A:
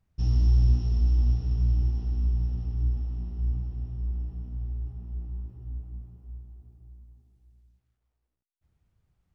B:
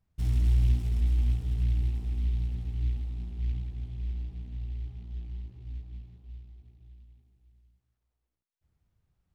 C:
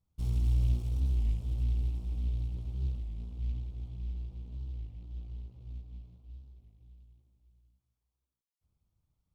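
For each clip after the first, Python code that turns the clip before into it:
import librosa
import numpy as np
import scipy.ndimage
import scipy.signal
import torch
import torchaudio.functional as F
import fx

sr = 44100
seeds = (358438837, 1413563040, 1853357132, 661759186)

y1 = fx.noise_mod_delay(x, sr, seeds[0], noise_hz=2700.0, depth_ms=0.046)
y1 = F.gain(torch.from_numpy(y1), -3.0).numpy()
y2 = fx.lower_of_two(y1, sr, delay_ms=0.91)
y2 = fx.peak_eq(y2, sr, hz=1800.0, db=-12.0, octaves=0.58)
y2 = fx.record_warp(y2, sr, rpm=33.33, depth_cents=160.0)
y2 = F.gain(torch.from_numpy(y2), -3.5).numpy()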